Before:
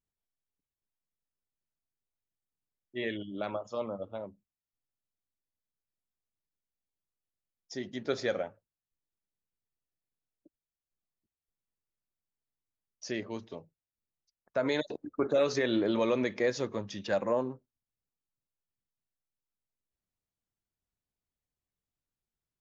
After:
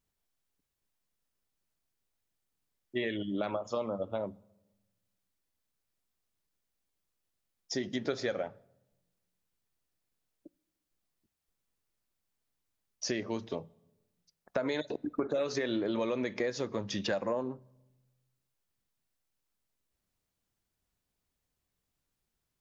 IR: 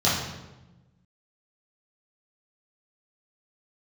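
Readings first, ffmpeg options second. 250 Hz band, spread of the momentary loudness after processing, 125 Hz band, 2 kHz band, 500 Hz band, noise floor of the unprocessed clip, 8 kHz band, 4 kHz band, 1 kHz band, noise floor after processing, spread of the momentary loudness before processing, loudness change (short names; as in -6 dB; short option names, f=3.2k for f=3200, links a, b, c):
-1.0 dB, 7 LU, 0.0 dB, -2.0 dB, -2.5 dB, under -85 dBFS, n/a, +0.5 dB, -1.5 dB, -85 dBFS, 15 LU, -2.0 dB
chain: -filter_complex "[0:a]acompressor=threshold=-38dB:ratio=6,asplit=2[a][b];[1:a]atrim=start_sample=2205[c];[b][c]afir=irnorm=-1:irlink=0,volume=-39dB[d];[a][d]amix=inputs=2:normalize=0,volume=8dB"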